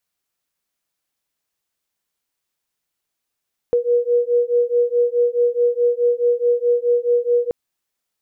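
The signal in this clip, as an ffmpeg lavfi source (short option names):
-f lavfi -i "aevalsrc='0.133*(sin(2*PI*479*t)+sin(2*PI*483.7*t))':d=3.78:s=44100"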